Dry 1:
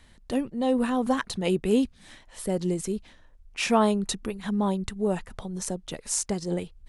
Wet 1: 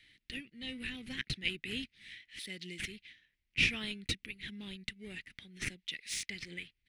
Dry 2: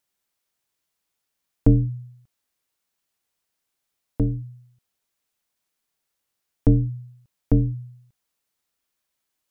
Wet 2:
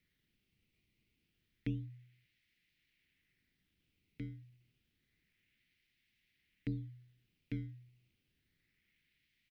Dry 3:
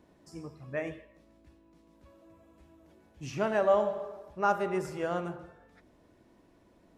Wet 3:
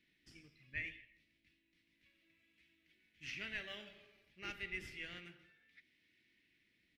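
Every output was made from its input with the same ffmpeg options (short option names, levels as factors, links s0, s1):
-filter_complex "[0:a]aderivative,asplit=2[s0][s1];[s1]acrusher=samples=14:mix=1:aa=0.000001:lfo=1:lforange=22.4:lforate=0.29,volume=0.316[s2];[s0][s2]amix=inputs=2:normalize=0,asoftclip=type=hard:threshold=0.0841,firequalizer=gain_entry='entry(120,0);entry(320,-7);entry(580,-24);entry(1000,-29);entry(2000,3);entry(7100,-26)':delay=0.05:min_phase=1,volume=3.55"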